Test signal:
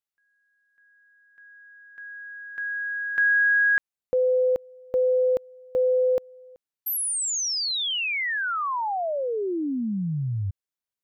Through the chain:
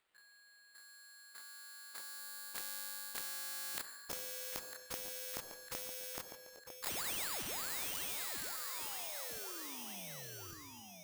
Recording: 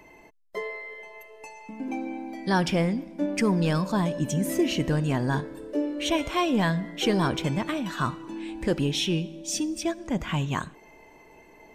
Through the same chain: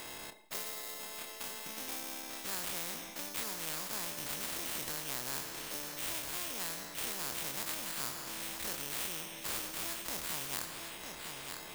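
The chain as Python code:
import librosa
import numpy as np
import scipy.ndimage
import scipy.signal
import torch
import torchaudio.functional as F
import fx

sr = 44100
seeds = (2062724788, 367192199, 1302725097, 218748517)

y = fx.spec_dilate(x, sr, span_ms=60)
y = fx.sample_hold(y, sr, seeds[0], rate_hz=5900.0, jitter_pct=0)
y = fx.transient(y, sr, attack_db=2, sustain_db=-4)
y = fx.low_shelf(y, sr, hz=300.0, db=-11.5)
y = fx.rev_schroeder(y, sr, rt60_s=0.75, comb_ms=29, drr_db=16.5)
y = fx.rider(y, sr, range_db=5, speed_s=0.5)
y = fx.echo_feedback(y, sr, ms=952, feedback_pct=32, wet_db=-18.0)
y = fx.dynamic_eq(y, sr, hz=2600.0, q=0.81, threshold_db=-41.0, ratio=4.0, max_db=-5)
y = fx.spectral_comp(y, sr, ratio=4.0)
y = y * librosa.db_to_amplitude(-5.5)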